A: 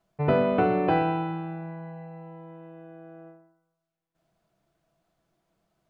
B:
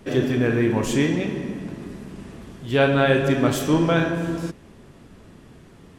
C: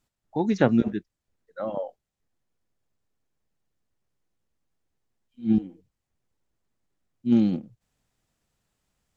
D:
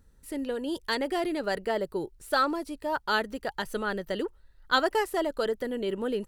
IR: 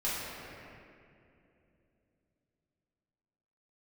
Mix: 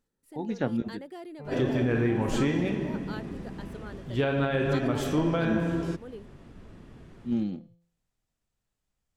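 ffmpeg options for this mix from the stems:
-filter_complex "[0:a]adelay=1200,volume=-11dB[a];[1:a]adelay=1450,volume=-3.5dB[b];[2:a]bandreject=f=170.6:t=h:w=4,bandreject=f=341.2:t=h:w=4,bandreject=f=511.8:t=h:w=4,bandreject=f=682.4:t=h:w=4,bandreject=f=853:t=h:w=4,bandreject=f=1.0236k:t=h:w=4,bandreject=f=1.1942k:t=h:w=4,bandreject=f=1.3648k:t=h:w=4,bandreject=f=1.5354k:t=h:w=4,bandreject=f=1.706k:t=h:w=4,bandreject=f=1.8766k:t=h:w=4,bandreject=f=2.0472k:t=h:w=4,bandreject=f=2.2178k:t=h:w=4,bandreject=f=2.3884k:t=h:w=4,bandreject=f=2.559k:t=h:w=4,bandreject=f=2.7296k:t=h:w=4,bandreject=f=2.9002k:t=h:w=4,bandreject=f=3.0708k:t=h:w=4,bandreject=f=3.2414k:t=h:w=4,bandreject=f=3.412k:t=h:w=4,bandreject=f=3.5826k:t=h:w=4,bandreject=f=3.7532k:t=h:w=4,bandreject=f=3.9238k:t=h:w=4,bandreject=f=4.0944k:t=h:w=4,bandreject=f=4.265k:t=h:w=4,bandreject=f=4.4356k:t=h:w=4,bandreject=f=4.6062k:t=h:w=4,bandreject=f=4.7768k:t=h:w=4,bandreject=f=4.9474k:t=h:w=4,bandreject=f=5.118k:t=h:w=4,bandreject=f=5.2886k:t=h:w=4,bandreject=f=5.4592k:t=h:w=4,bandreject=f=5.6298k:t=h:w=4,bandreject=f=5.8004k:t=h:w=4,volume=-9dB,asplit=2[c][d];[3:a]highpass=250,lowshelf=f=480:g=8,volume=-17dB[e];[d]apad=whole_len=312792[f];[a][f]sidechaincompress=threshold=-49dB:ratio=8:attack=16:release=564[g];[g][b]amix=inputs=2:normalize=0,lowpass=f=4k:p=1,alimiter=limit=-17.5dB:level=0:latency=1:release=143,volume=0dB[h];[c][e][h]amix=inputs=3:normalize=0,lowshelf=f=63:g=8"

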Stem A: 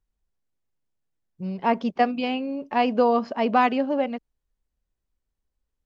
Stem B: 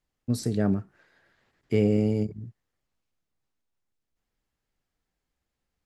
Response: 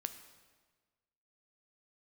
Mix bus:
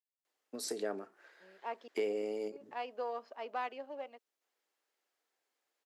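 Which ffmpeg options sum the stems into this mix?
-filter_complex "[0:a]aeval=exprs='if(lt(val(0),0),0.708*val(0),val(0))':c=same,volume=-17dB,asplit=3[a][b][c];[a]atrim=end=1.88,asetpts=PTS-STARTPTS,afade=t=out:st=1.876:d=0.004:c=hsin[d];[b]atrim=start=1.88:end=2.52,asetpts=PTS-STARTPTS,volume=0[e];[c]atrim=start=2.52,asetpts=PTS-STARTPTS,afade=t=in:d=0.004:c=hsin[f];[d][e][f]concat=n=3:v=0:a=1[g];[1:a]acompressor=threshold=-28dB:ratio=4,adelay=250,volume=1.5dB[h];[g][h]amix=inputs=2:normalize=0,highpass=f=380:w=0.5412,highpass=f=380:w=1.3066"

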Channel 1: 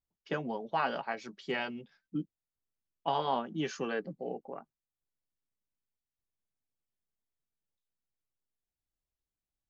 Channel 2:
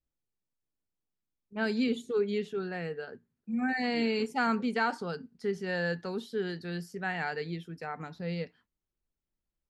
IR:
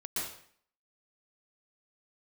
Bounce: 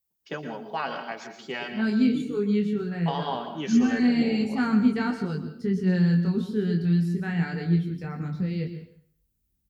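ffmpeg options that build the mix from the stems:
-filter_complex "[0:a]aemphasis=mode=production:type=50fm,volume=-1.5dB,asplit=2[a][b];[b]volume=-7.5dB[c];[1:a]asubboost=boost=11:cutoff=200,flanger=delay=19.5:depth=4.5:speed=0.22,adelay=200,volume=1.5dB,asplit=2[d][e];[e]volume=-11dB[f];[2:a]atrim=start_sample=2205[g];[c][f]amix=inputs=2:normalize=0[h];[h][g]afir=irnorm=-1:irlink=0[i];[a][d][i]amix=inputs=3:normalize=0,highpass=49"

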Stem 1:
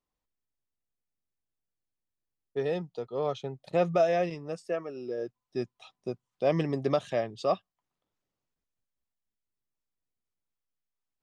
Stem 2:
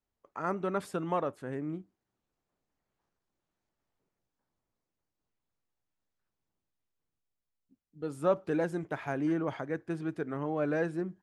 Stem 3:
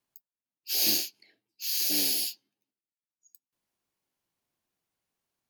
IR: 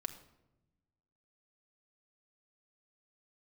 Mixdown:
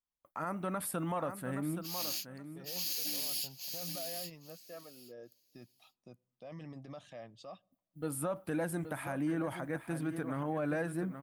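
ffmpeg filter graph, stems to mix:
-filter_complex "[0:a]alimiter=level_in=2dB:limit=-24dB:level=0:latency=1:release=26,volume=-2dB,volume=-13dB,asplit=2[a][b];[b]volume=-18dB[c];[1:a]agate=range=-33dB:threshold=-55dB:ratio=3:detection=peak,alimiter=limit=-22dB:level=0:latency=1:release=222,aexciter=amount=8.7:drive=5.2:freq=9.1k,volume=2dB,asplit=3[d][e][f];[e]volume=-11dB[g];[2:a]alimiter=limit=-21dB:level=0:latency=1:release=30,aeval=exprs='sgn(val(0))*max(abs(val(0))-0.00126,0)':c=same,adelay=1150,volume=-1.5dB,asplit=2[h][i];[i]volume=-9dB[j];[f]apad=whole_len=293234[k];[h][k]sidechaincompress=threshold=-47dB:ratio=8:attack=16:release=362[l];[3:a]atrim=start_sample=2205[m];[c][m]afir=irnorm=-1:irlink=0[n];[g][j]amix=inputs=2:normalize=0,aecho=0:1:823|1646|2469:1|0.16|0.0256[o];[a][d][l][n][o]amix=inputs=5:normalize=0,equalizer=f=400:w=4.7:g=-13,alimiter=level_in=2.5dB:limit=-24dB:level=0:latency=1:release=44,volume=-2.5dB"

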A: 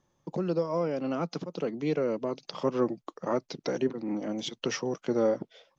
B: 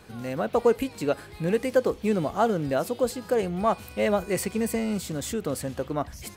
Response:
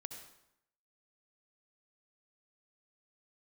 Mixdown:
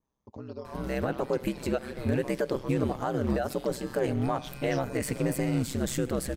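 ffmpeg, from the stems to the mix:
-filter_complex "[0:a]adynamicequalizer=threshold=0.00282:dfrequency=3800:dqfactor=0.97:tfrequency=3800:tqfactor=0.97:attack=5:release=100:ratio=0.375:range=2.5:mode=boostabove:tftype=bell,equalizer=f=1k:t=o:w=0.39:g=6,volume=-11dB[a];[1:a]equalizer=f=1.7k:t=o:w=0.45:g=4.5,alimiter=limit=-20dB:level=0:latency=1:release=231,adelay=650,volume=0dB,asplit=2[b][c];[c]volume=-8dB[d];[2:a]atrim=start_sample=2205[e];[d][e]afir=irnorm=-1:irlink=0[f];[a][b][f]amix=inputs=3:normalize=0,lowshelf=f=170:g=8,aeval=exprs='val(0)*sin(2*PI*65*n/s)':c=same"

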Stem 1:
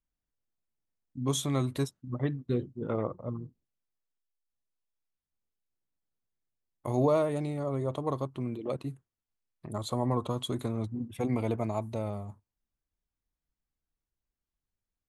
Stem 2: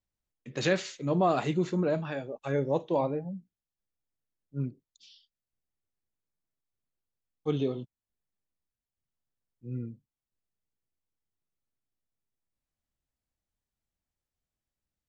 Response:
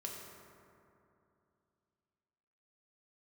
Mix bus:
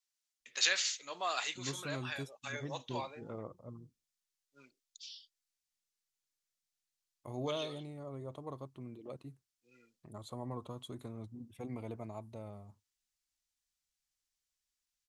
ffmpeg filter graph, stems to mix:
-filter_complex "[0:a]adelay=400,volume=-13dB[a];[1:a]highpass=1.4k,equalizer=f=5.9k:t=o:w=1.8:g=9.5,volume=-0.5dB[b];[a][b]amix=inputs=2:normalize=0"

